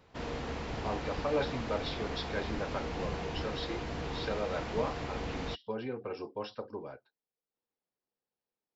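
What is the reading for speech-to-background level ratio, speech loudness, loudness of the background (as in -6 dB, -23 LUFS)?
0.0 dB, -38.5 LUFS, -38.5 LUFS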